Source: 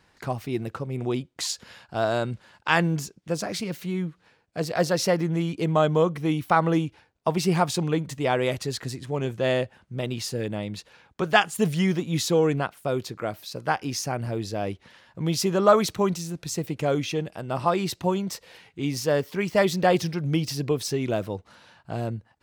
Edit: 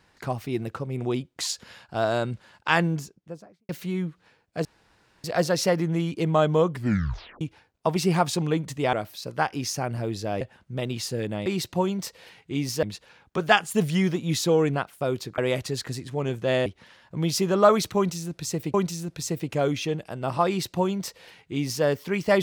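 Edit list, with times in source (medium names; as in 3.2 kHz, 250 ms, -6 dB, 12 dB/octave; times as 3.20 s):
2.69–3.69 s: studio fade out
4.65 s: insert room tone 0.59 s
6.10 s: tape stop 0.72 s
8.34–9.62 s: swap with 13.22–14.70 s
16.01–16.78 s: loop, 2 plays
17.74–19.11 s: copy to 10.67 s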